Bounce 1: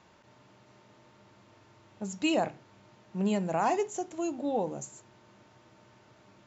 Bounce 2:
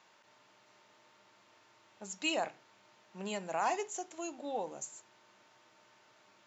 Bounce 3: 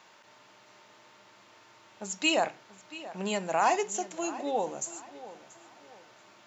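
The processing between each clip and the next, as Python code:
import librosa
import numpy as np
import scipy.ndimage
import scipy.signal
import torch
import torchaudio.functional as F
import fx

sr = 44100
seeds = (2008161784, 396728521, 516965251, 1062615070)

y1 = fx.highpass(x, sr, hz=1100.0, slope=6)
y2 = fx.echo_filtered(y1, sr, ms=683, feedback_pct=34, hz=4900.0, wet_db=-16.0)
y2 = y2 * librosa.db_to_amplitude(7.5)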